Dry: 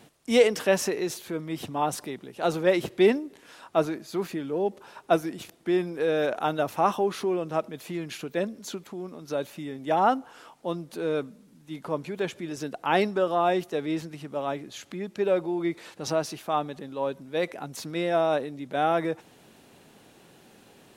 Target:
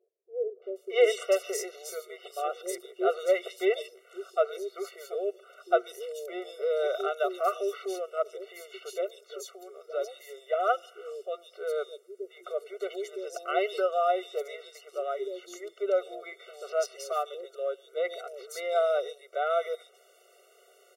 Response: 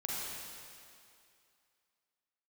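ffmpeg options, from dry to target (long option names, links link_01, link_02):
-filter_complex "[0:a]acrossover=split=360|3400[link_01][link_02][link_03];[link_02]adelay=620[link_04];[link_03]adelay=760[link_05];[link_01][link_04][link_05]amix=inputs=3:normalize=0,afftfilt=real='re*eq(mod(floor(b*sr/1024/380),2),1)':imag='im*eq(mod(floor(b*sr/1024/380),2),1)':win_size=1024:overlap=0.75"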